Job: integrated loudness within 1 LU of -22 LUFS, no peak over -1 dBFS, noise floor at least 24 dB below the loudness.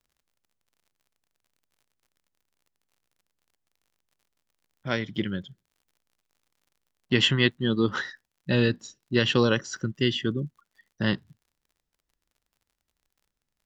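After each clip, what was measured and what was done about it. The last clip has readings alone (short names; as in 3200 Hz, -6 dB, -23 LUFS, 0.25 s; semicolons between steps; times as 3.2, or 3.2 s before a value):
ticks 47/s; loudness -26.0 LUFS; peak -8.0 dBFS; loudness target -22.0 LUFS
-> de-click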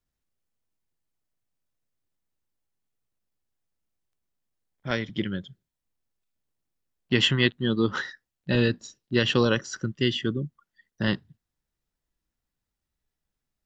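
ticks 0/s; loudness -26.0 LUFS; peak -8.0 dBFS; loudness target -22.0 LUFS
-> gain +4 dB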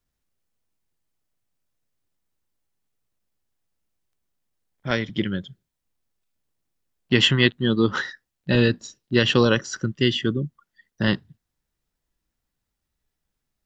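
loudness -22.0 LUFS; peak -4.0 dBFS; noise floor -81 dBFS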